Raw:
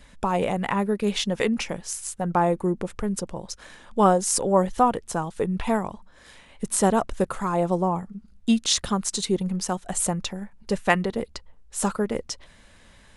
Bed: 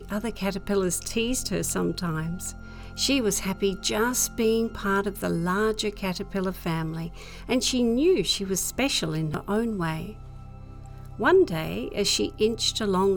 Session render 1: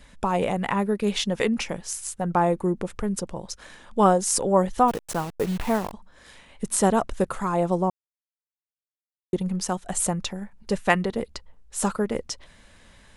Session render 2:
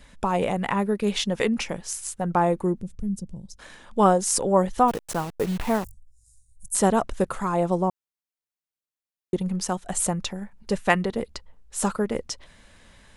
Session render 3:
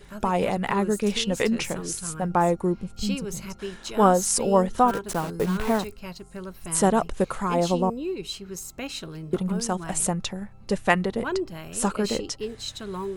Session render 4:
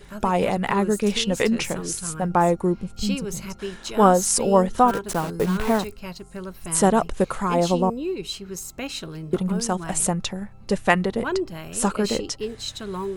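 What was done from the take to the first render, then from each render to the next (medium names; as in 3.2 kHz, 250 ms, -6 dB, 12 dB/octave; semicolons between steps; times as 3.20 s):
4.88–5.93 s: send-on-delta sampling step -32.5 dBFS; 7.90–9.33 s: mute
2.81–3.59 s: FFT filter 210 Hz 0 dB, 300 Hz -12 dB, 1.3 kHz -29 dB, 5.9 kHz -10 dB; 5.84–6.75 s: inverse Chebyshev band-stop 240–3200 Hz, stop band 50 dB
add bed -9.5 dB
trim +2.5 dB; peak limiter -3 dBFS, peak gain reduction 1 dB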